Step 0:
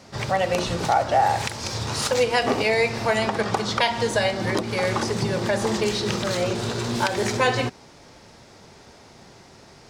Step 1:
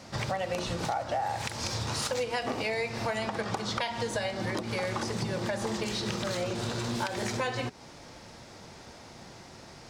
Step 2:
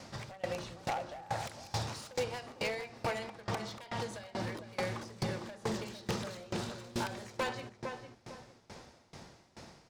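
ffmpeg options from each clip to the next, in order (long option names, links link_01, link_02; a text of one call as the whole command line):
ffmpeg -i in.wav -af "bandreject=frequency=410:width=12,acompressor=threshold=-30dB:ratio=4" out.wav
ffmpeg -i in.wav -filter_complex "[0:a]asplit=2[link_01][link_02];[link_02]adelay=455,lowpass=frequency=1900:poles=1,volume=-6dB,asplit=2[link_03][link_04];[link_04]adelay=455,lowpass=frequency=1900:poles=1,volume=0.37,asplit=2[link_05][link_06];[link_06]adelay=455,lowpass=frequency=1900:poles=1,volume=0.37,asplit=2[link_07][link_08];[link_08]adelay=455,lowpass=frequency=1900:poles=1,volume=0.37[link_09];[link_01][link_03][link_05][link_07][link_09]amix=inputs=5:normalize=0,aeval=exprs='0.0596*(abs(mod(val(0)/0.0596+3,4)-2)-1)':channel_layout=same,aeval=exprs='val(0)*pow(10,-23*if(lt(mod(2.3*n/s,1),2*abs(2.3)/1000),1-mod(2.3*n/s,1)/(2*abs(2.3)/1000),(mod(2.3*n/s,1)-2*abs(2.3)/1000)/(1-2*abs(2.3)/1000))/20)':channel_layout=same" out.wav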